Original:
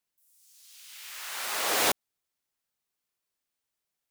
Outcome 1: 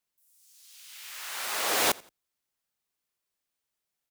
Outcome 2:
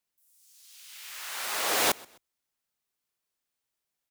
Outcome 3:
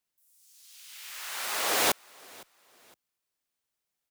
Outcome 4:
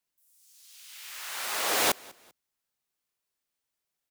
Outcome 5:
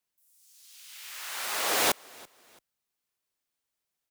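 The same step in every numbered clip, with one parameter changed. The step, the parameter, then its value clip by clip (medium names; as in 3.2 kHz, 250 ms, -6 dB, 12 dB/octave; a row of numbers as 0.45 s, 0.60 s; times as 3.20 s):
frequency-shifting echo, time: 86 ms, 129 ms, 511 ms, 196 ms, 335 ms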